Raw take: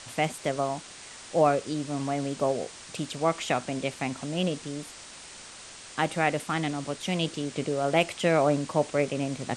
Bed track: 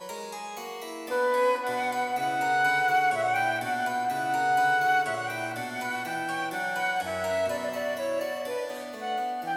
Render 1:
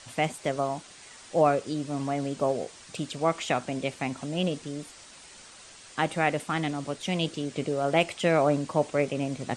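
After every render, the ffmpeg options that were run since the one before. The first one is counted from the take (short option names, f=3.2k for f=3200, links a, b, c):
-af "afftdn=nr=6:nf=-46"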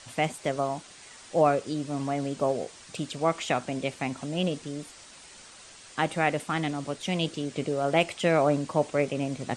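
-af anull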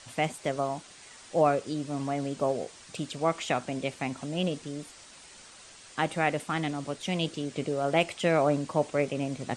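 -af "volume=-1.5dB"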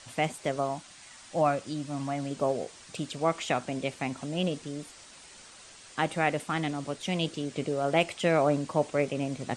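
-filter_complex "[0:a]asettb=1/sr,asplit=3[a][b][c];[a]atrim=end=0.754[d];[b]atrim=start=0.75:end=2.31,asetpts=PTS-STARTPTS,afade=t=in:d=0.004:c=qsin,afade=t=out:st=1.556:d=0.004:c=qsin,equalizer=f=430:t=o:w=0.44:g=-11.5[e];[c]atrim=start=2.306[f];[d][e]acrossfade=d=0.004:c1=hsin:c2=qsin[g];[g][f]acrossfade=d=0.004:c1=qsin:c2=hsin"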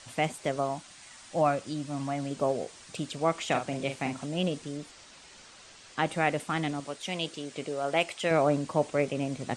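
-filter_complex "[0:a]asettb=1/sr,asplit=3[a][b][c];[a]atrim=end=3.474[d];[b]atrim=start=3.47:end=4.26,asetpts=PTS-STARTPTS,afade=t=in:d=0.004:c=qsin,afade=t=out:st=0.786:d=0.004:c=qsin,asplit=2[e][f];[f]adelay=43,volume=-7dB[g];[e][g]amix=inputs=2:normalize=0,atrim=end_sample=34839[h];[c]atrim=start=4.256[i];[d][h]acrossfade=d=0.004:c1=hsin:c2=qsin[j];[j][i]acrossfade=d=0.004:c1=qsin:c2=hsin,asettb=1/sr,asplit=3[k][l][m];[k]atrim=end=4.774[n];[l]atrim=start=4.77:end=6.06,asetpts=PTS-STARTPTS,afade=t=in:d=0.004:c=qsin,afade=t=out:st=1.286:d=0.004:c=qsin,lowpass=7.1k[o];[m]atrim=start=6.056[p];[n][o]acrossfade=d=0.004:c1=hsin:c2=qsin[q];[q][p]acrossfade=d=0.004:c1=qsin:c2=hsin,asettb=1/sr,asplit=3[r][s][t];[r]atrim=end=6.804[u];[s]atrim=start=6.8:end=8.31,asetpts=PTS-STARTPTS,afade=t=in:d=0.004:c=qsin,afade=t=out:st=1.506:d=0.004:c=qsin,lowshelf=f=300:g=-10.5[v];[t]atrim=start=8.306[w];[u][v]acrossfade=d=0.004:c1=hsin:c2=qsin[x];[x][w]acrossfade=d=0.004:c1=qsin:c2=hsin"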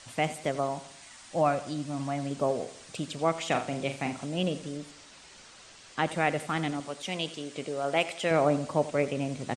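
-af "aecho=1:1:86|172|258|344:0.168|0.0789|0.0371|0.0174"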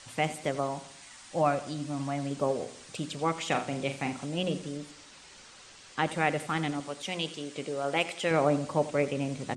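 -af "bandreject=f=660:w=12,bandreject=f=60.62:t=h:w=4,bandreject=f=121.24:t=h:w=4,bandreject=f=181.86:t=h:w=4,bandreject=f=242.48:t=h:w=4,bandreject=f=303.1:t=h:w=4,bandreject=f=363.72:t=h:w=4"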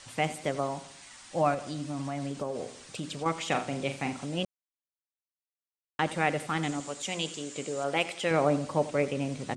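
-filter_complex "[0:a]asettb=1/sr,asplit=3[a][b][c];[a]atrim=end=1.544[d];[b]atrim=start=1.54:end=3.26,asetpts=PTS-STARTPTS,afade=t=in:d=0.004:c=qsin,afade=t=out:st=1.716:d=0.004:c=qsin,acompressor=threshold=-30dB:ratio=3:attack=3.2:release=140:knee=1:detection=peak[e];[c]atrim=start=3.256[f];[d][e]acrossfade=d=0.004:c1=hsin:c2=qsin[g];[g][f]acrossfade=d=0.004:c1=qsin:c2=hsin,asettb=1/sr,asplit=3[h][i][j];[h]atrim=end=6.634[k];[i]atrim=start=6.63:end=7.84,asetpts=PTS-STARTPTS,afade=t=in:d=0.004:c=qsin,afade=t=out:st=1.206:d=0.004:c=qsin,equalizer=f=7.2k:t=o:w=0.31:g=12.5[l];[j]atrim=start=7.836[m];[k][l]acrossfade=d=0.004:c1=hsin:c2=qsin[n];[n][m]acrossfade=d=0.004:c1=qsin:c2=hsin,asplit=3[o][p][q];[o]atrim=end=4.45,asetpts=PTS-STARTPTS,afade=t=out:st=4.446:d=0.004:c=hsin[r];[p]atrim=start=4.45:end=5.99,asetpts=PTS-STARTPTS,volume=0[s];[q]atrim=start=5.99,asetpts=PTS-STARTPTS,afade=t=in:d=0.004:c=hsin[t];[r][s][t]concat=n=3:v=0:a=1"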